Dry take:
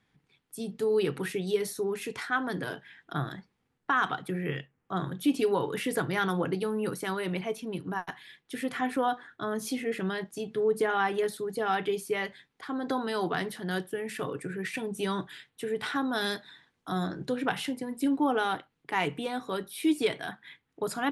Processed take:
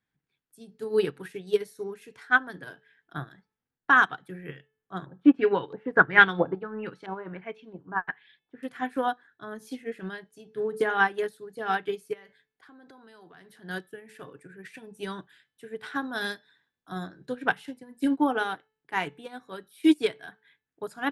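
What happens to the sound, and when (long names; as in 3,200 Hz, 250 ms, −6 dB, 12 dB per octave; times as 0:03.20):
0:05.06–0:08.63: auto-filter low-pass saw up 1.5 Hz 680–4,300 Hz
0:12.13–0:13.61: downward compressor 4 to 1, threshold −36 dBFS
whole clip: parametric band 1,600 Hz +7 dB 0.22 octaves; hum removal 435.2 Hz, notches 14; expander for the loud parts 2.5 to 1, over −35 dBFS; level +9 dB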